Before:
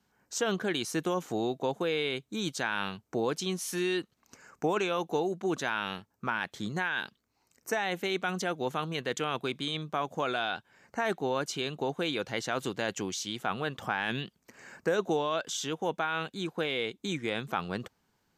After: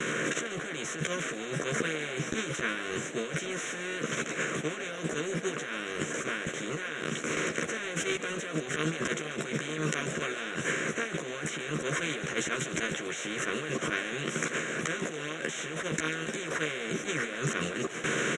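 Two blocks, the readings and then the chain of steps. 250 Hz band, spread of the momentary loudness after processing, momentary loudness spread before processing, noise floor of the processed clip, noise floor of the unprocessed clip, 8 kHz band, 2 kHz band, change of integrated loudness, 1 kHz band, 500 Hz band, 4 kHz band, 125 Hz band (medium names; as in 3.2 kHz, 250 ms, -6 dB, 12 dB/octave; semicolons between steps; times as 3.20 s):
-0.5 dB, 3 LU, 5 LU, -38 dBFS, -75 dBFS, +5.5 dB, +3.5 dB, 0.0 dB, -4.5 dB, -2.0 dB, -1.0 dB, +2.5 dB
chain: spectral levelling over time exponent 0.2; reverb removal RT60 1 s; elliptic band-pass 120–7200 Hz, stop band 40 dB; gate with hold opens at -24 dBFS; treble shelf 5.4 kHz +10 dB; slow attack 152 ms; compressor with a negative ratio -32 dBFS, ratio -1; static phaser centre 2 kHz, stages 4; doubling 13 ms -3 dB; frequency-shifting echo 142 ms, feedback 60%, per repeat +96 Hz, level -13 dB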